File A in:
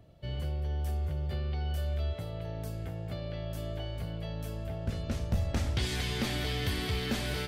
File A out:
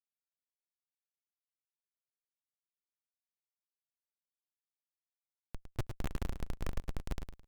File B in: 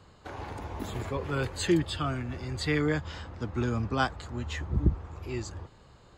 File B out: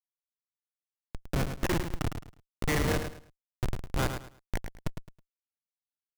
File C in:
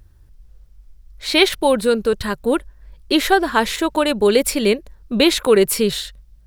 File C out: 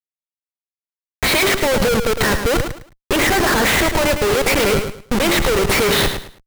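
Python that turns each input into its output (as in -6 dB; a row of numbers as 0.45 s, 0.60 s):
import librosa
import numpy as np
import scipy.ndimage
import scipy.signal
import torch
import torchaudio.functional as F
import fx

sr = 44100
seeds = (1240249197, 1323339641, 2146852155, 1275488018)

p1 = scipy.signal.sosfilt(scipy.signal.cheby1(4, 1.0, [110.0, 9700.0], 'bandpass', fs=sr, output='sos'), x)
p2 = fx.hum_notches(p1, sr, base_hz=50, count=8)
p3 = fx.noise_reduce_blind(p2, sr, reduce_db=16)
p4 = fx.graphic_eq_10(p3, sr, hz=(250, 500, 2000, 8000), db=(-12, 4, 10, -12))
p5 = fx.over_compress(p4, sr, threshold_db=-23.0, ratio=-0.5)
p6 = p4 + (p5 * 10.0 ** (3.0 / 20.0))
p7 = fx.schmitt(p6, sr, flips_db=-16.0)
y = p7 + fx.echo_feedback(p7, sr, ms=107, feedback_pct=25, wet_db=-8.0, dry=0)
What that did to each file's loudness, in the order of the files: -8.5 LU, -2.0 LU, +1.0 LU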